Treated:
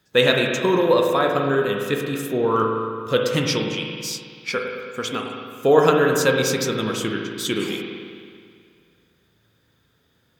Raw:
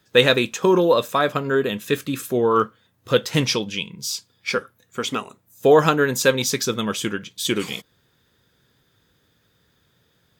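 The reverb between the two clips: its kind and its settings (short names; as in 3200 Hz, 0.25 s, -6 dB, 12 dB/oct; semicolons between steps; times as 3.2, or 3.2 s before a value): spring tank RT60 2.1 s, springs 36/54 ms, chirp 75 ms, DRR 1.5 dB; gain -2.5 dB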